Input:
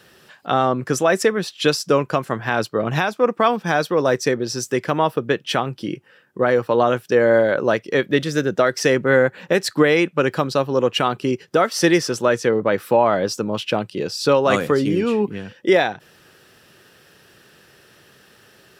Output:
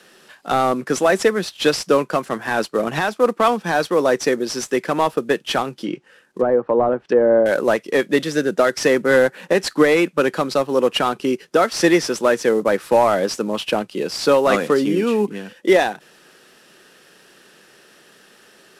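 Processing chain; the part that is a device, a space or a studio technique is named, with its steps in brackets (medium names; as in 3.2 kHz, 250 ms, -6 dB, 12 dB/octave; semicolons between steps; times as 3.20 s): early wireless headset (high-pass 180 Hz 24 dB/octave; CVSD coder 64 kbps); 5.78–7.46 s: low-pass that closes with the level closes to 880 Hz, closed at -15.5 dBFS; trim +1.5 dB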